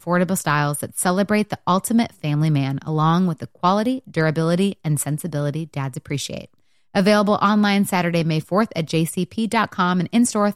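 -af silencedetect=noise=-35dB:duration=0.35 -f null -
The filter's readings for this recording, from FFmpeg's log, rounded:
silence_start: 6.45
silence_end: 6.95 | silence_duration: 0.50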